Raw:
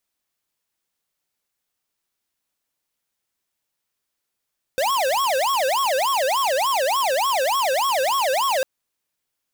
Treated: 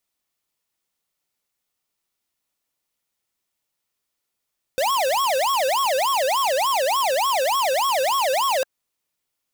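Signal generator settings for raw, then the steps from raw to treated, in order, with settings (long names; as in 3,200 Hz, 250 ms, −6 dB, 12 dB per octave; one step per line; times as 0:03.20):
siren wail 514–1,110 Hz 3.4 per second square −20.5 dBFS 3.85 s
notch filter 1,600 Hz, Q 13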